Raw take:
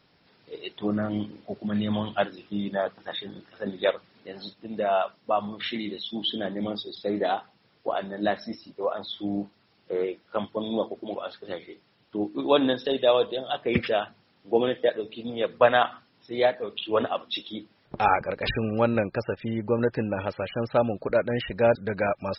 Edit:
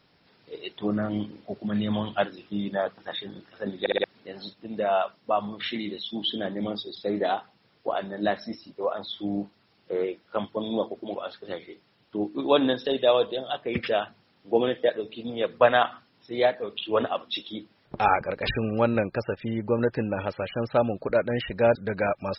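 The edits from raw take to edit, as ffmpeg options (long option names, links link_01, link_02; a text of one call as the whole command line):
ffmpeg -i in.wav -filter_complex "[0:a]asplit=6[link_01][link_02][link_03][link_04][link_05][link_06];[link_01]atrim=end=3.862[link_07];[link_02]atrim=start=3.798:end=3.862[link_08];[link_03]atrim=start=3.798:end=3.862[link_09];[link_04]atrim=start=3.798:end=3.862[link_10];[link_05]atrim=start=4.038:end=13.83,asetpts=PTS-STARTPTS,afade=type=out:start_time=9.392:duration=0.4:silence=0.473151[link_11];[link_06]atrim=start=13.83,asetpts=PTS-STARTPTS,afade=type=in:duration=0.004:curve=hsin:silence=0.473151[link_12];[link_07][link_08]acrossfade=duration=0.004:curve1=hsin:curve2=hsin[link_13];[link_13][link_09]acrossfade=duration=0.004:curve1=hsin:curve2=hsin[link_14];[link_14][link_10]acrossfade=duration=0.004:curve1=hsin:curve2=hsin[link_15];[link_11][link_12]concat=n=2:v=0:a=1[link_16];[link_15][link_16]acrossfade=duration=0.004:curve1=hsin:curve2=hsin" out.wav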